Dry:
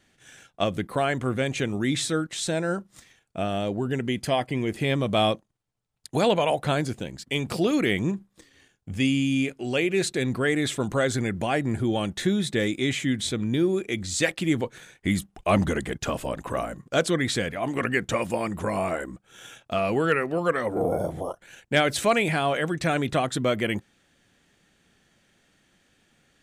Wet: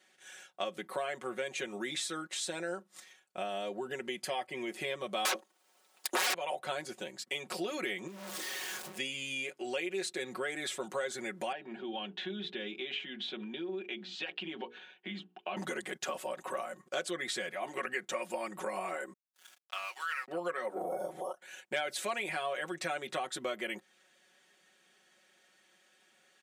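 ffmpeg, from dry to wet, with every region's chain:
ffmpeg -i in.wav -filter_complex "[0:a]asettb=1/sr,asplit=3[link_01][link_02][link_03];[link_01]atrim=end=5.254[link_04];[link_02]atrim=start=5.25:end=6.34,asetpts=PTS-STARTPTS,afade=type=in:duration=0.004:curve=qsin,afade=type=out:start_time=1.086:duration=0.004:curve=qsin,aeval=exprs='0.316*sin(PI/2*8.91*val(0)/0.316)':channel_layout=same,highpass=frequency=250:width=0.5412,highpass=frequency=250:width=1.3066[link_05];[link_03]atrim=start=6.336[link_06];[link_04][link_05]acrossfade=duration=0.004:curve1=hsin:curve2=qsin[link_07];[link_07][link_06]acrossfade=duration=0.004:curve1=qsin:curve2=hsin,asettb=1/sr,asplit=3[link_08][link_09][link_10];[link_08]atrim=end=8.074[link_11];[link_09]atrim=start=8.07:end=8.98,asetpts=PTS-STARTPTS,afade=type=in:duration=0.004:curve=qsin,afade=type=out:start_time=0.906:duration=0.004:curve=qsin,aeval=exprs='val(0)+0.5*0.0299*sgn(val(0))':channel_layout=same,acompressor=threshold=-33dB:ratio=4:attack=3.2:release=140:knee=1:detection=peak[link_12];[link_10]atrim=start=8.976[link_13];[link_11][link_12]acrossfade=duration=0.004:curve1=hsin:curve2=qsin[link_14];[link_14][link_13]acrossfade=duration=0.004:curve1=qsin:curve2=hsin,asettb=1/sr,asplit=3[link_15][link_16][link_17];[link_15]atrim=end=11.524[link_18];[link_16]atrim=start=11.52:end=15.57,asetpts=PTS-STARTPTS,afade=type=in:duration=0.004:curve=qsin,afade=type=out:start_time=4.046:duration=0.004:curve=qsin,bandreject=frequency=60:width_type=h:width=6,bandreject=frequency=120:width_type=h:width=6,bandreject=frequency=180:width_type=h:width=6,bandreject=frequency=240:width_type=h:width=6,bandreject=frequency=300:width_type=h:width=6,bandreject=frequency=360:width_type=h:width=6,bandreject=frequency=420:width_type=h:width=6,bandreject=frequency=480:width_type=h:width=6,acompressor=threshold=-25dB:ratio=3:attack=3.2:release=140:knee=1:detection=peak,highpass=frequency=180:width=0.5412,highpass=frequency=180:width=1.3066,equalizer=frequency=200:width_type=q:width=4:gain=3,equalizer=frequency=300:width_type=q:width=4:gain=-5,equalizer=frequency=530:width_type=q:width=4:gain=-8,equalizer=frequency=1200:width_type=q:width=4:gain=-7,equalizer=frequency=2000:width_type=q:width=4:gain=-9,equalizer=frequency=2900:width_type=q:width=4:gain=6,lowpass=frequency=3400:width=0.5412,lowpass=frequency=3400:width=1.3066[link_19];[link_17]atrim=start=15.566[link_20];[link_18][link_19]acrossfade=duration=0.004:curve1=hsin:curve2=qsin[link_21];[link_21][link_20]acrossfade=duration=0.004:curve1=qsin:curve2=hsin,asettb=1/sr,asplit=3[link_22][link_23][link_24];[link_22]atrim=end=19.134[link_25];[link_23]atrim=start=19.13:end=20.28,asetpts=PTS-STARTPTS,afade=type=in:duration=0.004:curve=qsin,afade=type=out:start_time=1.146:duration=0.004:curve=qsin,highpass=frequency=1000:width=0.5412,highpass=frequency=1000:width=1.3066,aeval=exprs='sgn(val(0))*max(abs(val(0))-0.0075,0)':channel_layout=same[link_26];[link_24]atrim=start=20.276[link_27];[link_25][link_26]acrossfade=duration=0.004:curve1=hsin:curve2=qsin[link_28];[link_28][link_27]acrossfade=duration=0.004:curve1=qsin:curve2=hsin,highpass=440,aecho=1:1:5.4:0.83,acompressor=threshold=-33dB:ratio=2.5,volume=-3.5dB" out.wav

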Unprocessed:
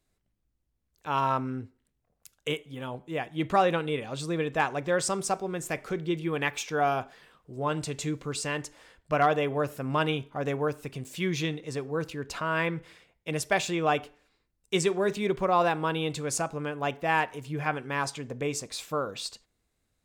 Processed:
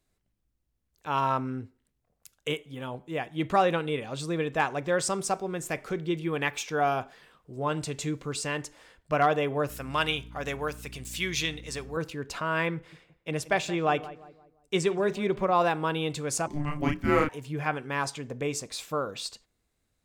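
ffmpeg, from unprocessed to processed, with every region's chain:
ffmpeg -i in.wav -filter_complex "[0:a]asettb=1/sr,asplit=3[link_01][link_02][link_03];[link_01]atrim=end=9.694[link_04];[link_02]atrim=start=9.69:end=11.97,asetpts=PTS-STARTPTS,afade=type=in:duration=0.004:curve=qsin,afade=type=out:start_time=2.276:duration=0.004:curve=qsin,tiltshelf=frequency=1100:gain=-7,aeval=exprs='val(0)+0.00631*(sin(2*PI*60*n/s)+sin(2*PI*2*60*n/s)/2+sin(2*PI*3*60*n/s)/3+sin(2*PI*4*60*n/s)/4+sin(2*PI*5*60*n/s)/5)':channel_layout=same[link_05];[link_03]atrim=start=11.966[link_06];[link_04][link_05]acrossfade=duration=0.004:curve1=hsin:curve2=qsin[link_07];[link_07][link_06]acrossfade=duration=0.004:curve1=qsin:curve2=hsin,asettb=1/sr,asplit=3[link_08][link_09][link_10];[link_08]atrim=end=12.754[link_11];[link_09]atrim=start=12.75:end=15.55,asetpts=PTS-STARTPTS,afade=type=in:duration=0.004:curve=qsin,afade=type=out:start_time=2.796:duration=0.004:curve=qsin,highshelf=frequency=4900:gain=-6,asplit=2[link_12][link_13];[link_13]adelay=174,lowpass=frequency=1400:poles=1,volume=-15.5dB,asplit=2[link_14][link_15];[link_15]adelay=174,lowpass=frequency=1400:poles=1,volume=0.41,asplit=2[link_16][link_17];[link_17]adelay=174,lowpass=frequency=1400:poles=1,volume=0.41,asplit=2[link_18][link_19];[link_19]adelay=174,lowpass=frequency=1400:poles=1,volume=0.41[link_20];[link_12][link_14][link_16][link_18][link_20]amix=inputs=5:normalize=0,atrim=end_sample=123480[link_21];[link_10]atrim=start=15.546[link_22];[link_11][link_21]acrossfade=duration=0.004:curve1=hsin:curve2=qsin[link_23];[link_23][link_22]acrossfade=duration=0.004:curve1=qsin:curve2=hsin,asettb=1/sr,asplit=3[link_24][link_25][link_26];[link_24]atrim=end=16.474[link_27];[link_25]atrim=start=16.47:end=17.29,asetpts=PTS-STARTPTS,afade=type=in:duration=0.004:curve=qsin,afade=type=out:start_time=0.816:duration=0.004:curve=qsin,equalizer=frequency=69:width=0.56:gain=5,afreqshift=-440,asplit=2[link_28][link_29];[link_29]adelay=33,volume=-2.5dB[link_30];[link_28][link_30]amix=inputs=2:normalize=0,atrim=end_sample=36162[link_31];[link_26]atrim=start=17.286[link_32];[link_27][link_31]acrossfade=duration=0.004:curve1=hsin:curve2=qsin[link_33];[link_33][link_32]acrossfade=duration=0.004:curve1=qsin:curve2=hsin" out.wav

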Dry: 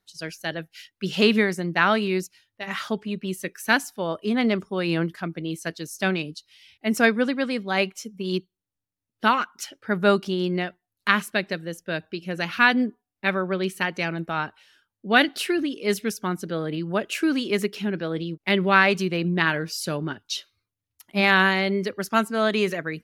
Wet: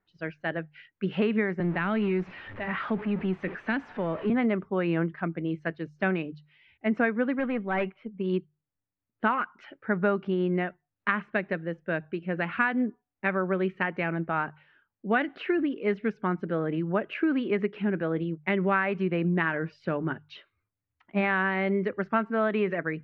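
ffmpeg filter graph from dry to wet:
ffmpeg -i in.wav -filter_complex "[0:a]asettb=1/sr,asplit=3[link_01][link_02][link_03];[link_01]atrim=end=1.604[link_04];[link_02]atrim=start=1.6:end=4.3,asetpts=PTS-STARTPTS,afade=type=in:duration=0.004:curve=qsin,afade=type=out:start_time=2.696:duration=0.004:curve=qsin,aeval=exprs='val(0)+0.5*0.0237*sgn(val(0))':channel_layout=same,acrossover=split=290|3000[link_05][link_06][link_07];[link_06]acompressor=threshold=-29dB:ratio=3:attack=3.2:release=140:knee=2.83:detection=peak[link_08];[link_05][link_08][link_07]amix=inputs=3:normalize=0[link_09];[link_03]atrim=start=4.296[link_10];[link_04][link_09]acrossfade=duration=0.004:curve1=hsin:curve2=qsin[link_11];[link_11][link_10]acrossfade=duration=0.004:curve1=qsin:curve2=hsin,asettb=1/sr,asplit=3[link_12][link_13][link_14];[link_12]atrim=end=7.394[link_15];[link_13]atrim=start=7.39:end=8.17,asetpts=PTS-STARTPTS,afade=type=in:duration=0.004:curve=qsin,afade=type=out:start_time=0.776:duration=0.004:curve=qsin,lowpass=frequency=3700:width=0.5412,lowpass=frequency=3700:width=1.3066,aeval=exprs='(tanh(10*val(0)+0.15)-tanh(0.15))/10':channel_layout=same[link_16];[link_14]atrim=start=8.166[link_17];[link_15][link_16]acrossfade=duration=0.004:curve1=hsin:curve2=qsin[link_18];[link_18][link_17]acrossfade=duration=0.004:curve1=qsin:curve2=hsin,acompressor=threshold=-21dB:ratio=5,lowpass=frequency=2200:width=0.5412,lowpass=frequency=2200:width=1.3066,bandreject=frequency=50:width_type=h:width=6,bandreject=frequency=100:width_type=h:width=6,bandreject=frequency=150:width_type=h:width=6" out.wav

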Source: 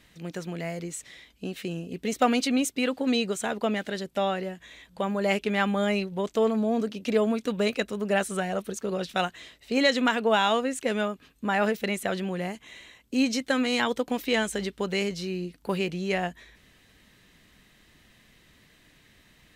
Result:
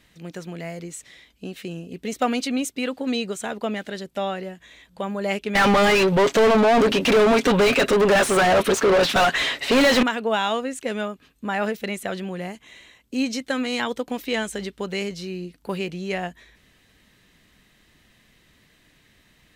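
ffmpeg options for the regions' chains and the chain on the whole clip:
ffmpeg -i in.wav -filter_complex "[0:a]asettb=1/sr,asplit=3[link_01][link_02][link_03];[link_01]atrim=end=5.554[link_04];[link_02]atrim=start=5.55:end=10.03,asetpts=PTS-STARTPTS,afade=type=in:duration=0.004:curve=qsin,afade=type=out:start_time=4.476:duration=0.004:curve=qsin,aecho=1:1:7.3:0.4,atrim=end_sample=197568,asplit=2[link_05][link_06];[link_06]highpass=frequency=720:poles=1,volume=37dB,asoftclip=type=tanh:threshold=-9dB[link_07];[link_05][link_07]amix=inputs=2:normalize=0,lowpass=frequency=2200:poles=1,volume=-6dB[link_08];[link_03]atrim=start=10.026[link_09];[link_04][link_08]acrossfade=duration=0.004:curve1=hsin:curve2=qsin[link_10];[link_10][link_09]acrossfade=duration=0.004:curve1=qsin:curve2=hsin" out.wav

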